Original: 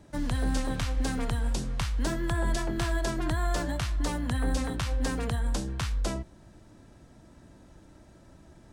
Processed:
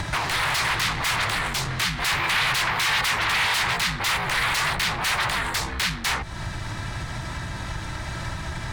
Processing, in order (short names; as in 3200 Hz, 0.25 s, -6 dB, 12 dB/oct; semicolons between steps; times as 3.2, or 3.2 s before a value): sine folder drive 17 dB, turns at -18.5 dBFS; compressor 12:1, threshold -37 dBFS, peak gain reduction 16.5 dB; graphic EQ 125/250/500/1000/2000/4000 Hz +6/-10/-7/+6/+9/+7 dB; gain +9 dB